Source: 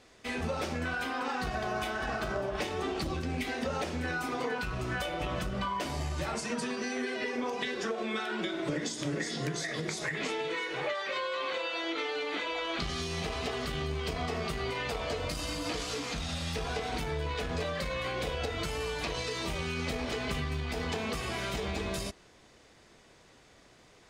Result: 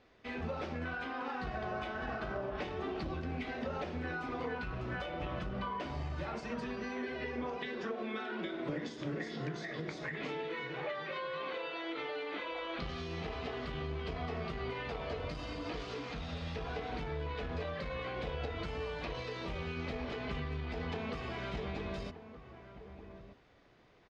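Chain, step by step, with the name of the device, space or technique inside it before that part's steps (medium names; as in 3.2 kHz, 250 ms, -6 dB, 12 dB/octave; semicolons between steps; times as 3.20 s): shout across a valley (distance through air 220 m; echo from a far wall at 210 m, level -11 dB); trim -4.5 dB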